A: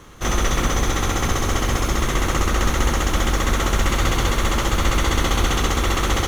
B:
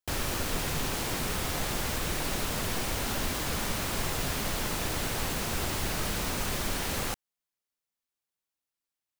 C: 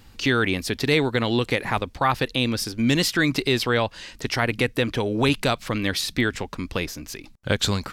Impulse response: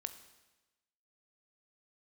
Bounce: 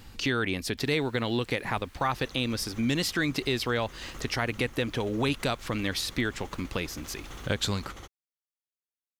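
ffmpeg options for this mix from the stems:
-filter_complex "[0:a]alimiter=limit=-16dB:level=0:latency=1:release=274,adelay=1800,volume=-15.5dB[a];[1:a]acrossover=split=2700[b][c];[c]acompressor=threshold=-42dB:ratio=4:attack=1:release=60[d];[b][d]amix=inputs=2:normalize=0,highpass=1.5k,adelay=700,volume=-13dB[e];[2:a]volume=1.5dB[f];[a][e][f]amix=inputs=3:normalize=0,acompressor=threshold=-39dB:ratio=1.5"

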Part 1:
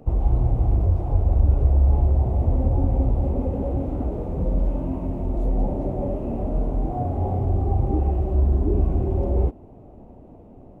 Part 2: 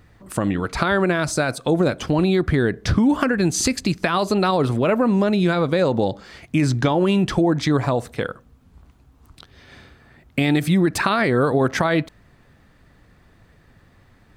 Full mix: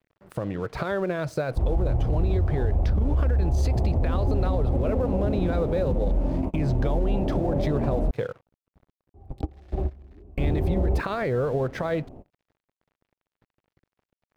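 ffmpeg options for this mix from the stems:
-filter_complex "[0:a]adelay=1500,volume=1dB,asplit=3[a][b][c];[a]atrim=end=8.11,asetpts=PTS-STARTPTS,afade=t=out:st=8.106:d=0.004:c=hsin[d];[b]atrim=start=8.11:end=9.14,asetpts=PTS-STARTPTS,volume=0[e];[c]atrim=start=9.14,asetpts=PTS-STARTPTS,afade=t=in:d=0.004:c=hsin[f];[d][e][f]concat=n=3:v=0:a=1[g];[1:a]equalizer=f=125:t=o:w=1:g=10,equalizer=f=250:t=o:w=1:g=-4,equalizer=f=500:t=o:w=1:g=11,equalizer=f=8k:t=o:w=1:g=-11,acompressor=threshold=-20dB:ratio=2,aeval=exprs='sgn(val(0))*max(abs(val(0))-0.00841,0)':c=same,volume=-7dB,asplit=2[h][i];[i]apad=whole_len=542461[j];[g][j]sidechaingate=range=-29dB:threshold=-54dB:ratio=16:detection=peak[k];[k][h]amix=inputs=2:normalize=0,alimiter=limit=-15.5dB:level=0:latency=1:release=48"

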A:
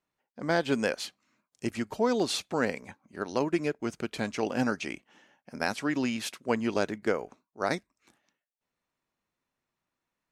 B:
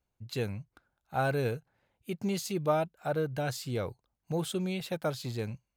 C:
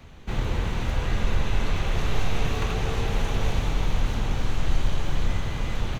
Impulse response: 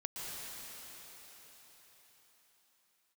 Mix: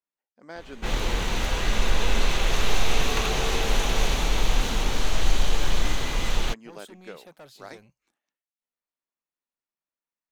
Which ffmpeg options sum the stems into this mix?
-filter_complex "[0:a]volume=-13dB[a];[1:a]asoftclip=type=tanh:threshold=-33dB,adelay=2350,volume=-8dB[b];[2:a]adynamicequalizer=threshold=0.00316:dfrequency=3000:dqfactor=0.7:tfrequency=3000:tqfactor=0.7:attack=5:release=100:ratio=0.375:range=3.5:mode=boostabove:tftype=highshelf,adelay=550,volume=1.5dB,asplit=2[c][d];[d]volume=-8.5dB[e];[3:a]atrim=start_sample=2205[f];[e][f]afir=irnorm=-1:irlink=0[g];[a][b][c][g]amix=inputs=4:normalize=0,equalizer=f=100:w=0.86:g=-13"

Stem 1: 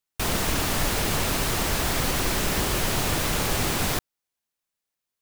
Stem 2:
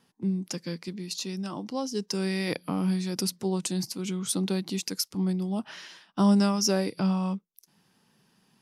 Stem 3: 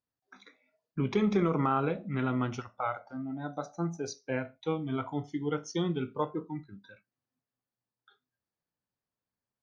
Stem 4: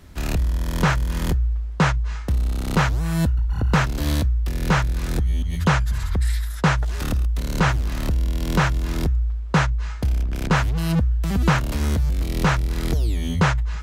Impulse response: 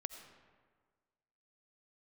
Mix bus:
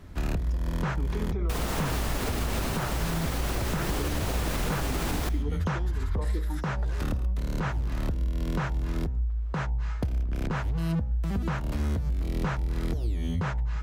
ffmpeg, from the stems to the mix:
-filter_complex "[0:a]adelay=1300,volume=1dB,asplit=2[a][b];[b]volume=-12.5dB[c];[1:a]acompressor=threshold=-28dB:ratio=6,asoftclip=type=tanh:threshold=-31dB,volume=-20dB[d];[2:a]alimiter=limit=-23dB:level=0:latency=1,tremolo=f=0.76:d=0.86,volume=-4.5dB,asplit=2[e][f];[f]volume=-6.5dB[g];[3:a]bandreject=f=63.42:t=h:w=4,bandreject=f=126.84:t=h:w=4,bandreject=f=190.26:t=h:w=4,bandreject=f=253.68:t=h:w=4,bandreject=f=317.1:t=h:w=4,bandreject=f=380.52:t=h:w=4,bandreject=f=443.94:t=h:w=4,bandreject=f=507.36:t=h:w=4,bandreject=f=570.78:t=h:w=4,bandreject=f=634.2:t=h:w=4,bandreject=f=697.62:t=h:w=4,bandreject=f=761.04:t=h:w=4,bandreject=f=824.46:t=h:w=4,bandreject=f=887.88:t=h:w=4,bandreject=f=951.3:t=h:w=4,volume=0.5dB[h];[d][e]amix=inputs=2:normalize=0,equalizer=f=530:w=0.3:g=12.5,acompressor=threshold=-37dB:ratio=6,volume=0dB[i];[a][h]amix=inputs=2:normalize=0,highshelf=f=2.3k:g=-9,acompressor=threshold=-25dB:ratio=5,volume=0dB[j];[4:a]atrim=start_sample=2205[k];[c][g]amix=inputs=2:normalize=0[l];[l][k]afir=irnorm=-1:irlink=0[m];[i][j][m]amix=inputs=3:normalize=0,alimiter=limit=-19dB:level=0:latency=1:release=57"

